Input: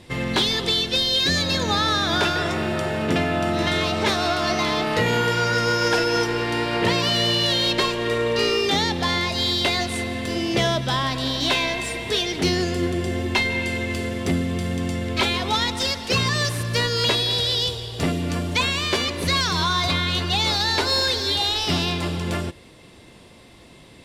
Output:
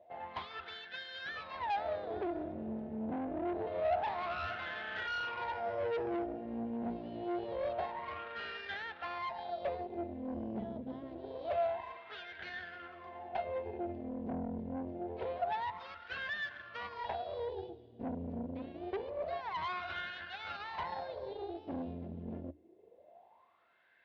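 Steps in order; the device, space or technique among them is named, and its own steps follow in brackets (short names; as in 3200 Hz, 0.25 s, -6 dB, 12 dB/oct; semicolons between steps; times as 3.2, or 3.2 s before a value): wah-wah guitar rig (wah 0.26 Hz 230–1600 Hz, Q 11; tube stage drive 37 dB, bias 0.75; speaker cabinet 76–4100 Hz, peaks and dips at 81 Hz +10 dB, 140 Hz -7 dB, 280 Hz -5 dB, 690 Hz +8 dB, 1200 Hz -6 dB); gain +4 dB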